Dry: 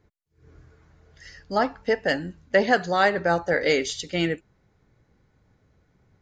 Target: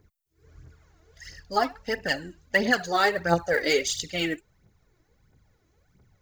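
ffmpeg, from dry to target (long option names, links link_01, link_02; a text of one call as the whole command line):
ffmpeg -i in.wav -af "aphaser=in_gain=1:out_gain=1:delay=3.2:decay=0.63:speed=1.5:type=triangular,aemphasis=mode=production:type=50kf,volume=-4.5dB" out.wav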